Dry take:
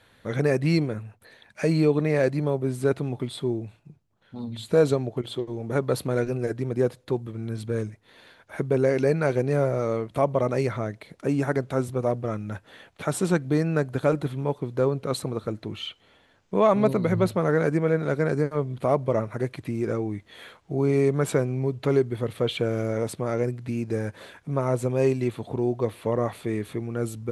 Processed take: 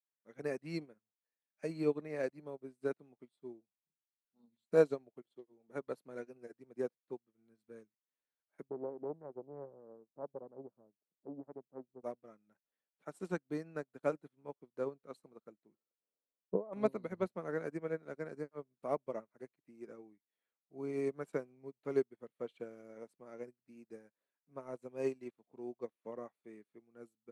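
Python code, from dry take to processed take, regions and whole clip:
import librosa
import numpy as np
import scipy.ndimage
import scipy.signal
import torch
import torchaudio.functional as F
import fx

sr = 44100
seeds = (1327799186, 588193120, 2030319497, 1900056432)

y = fx.chain(x, sr, fx.gaussian_blur(sigma=11.0),
    fx.doppler_dist(depth_ms=0.46), at=(8.68, 12.04))
y = fx.chain(y, sr, fx.over_compress(threshold_db=-25.0, ratio=-1.0),
    fx.gaussian_blur(sigma=7.8),
    fx.peak_eq(hz=500.0, db=7.5, octaves=0.85), at=(15.74, 16.73))
y = scipy.signal.sosfilt(scipy.signal.butter(4, 180.0, 'highpass', fs=sr, output='sos'), y)
y = fx.peak_eq(y, sr, hz=3500.0, db=-5.0, octaves=0.36)
y = fx.upward_expand(y, sr, threshold_db=-43.0, expansion=2.5)
y = y * 10.0 ** (-6.0 / 20.0)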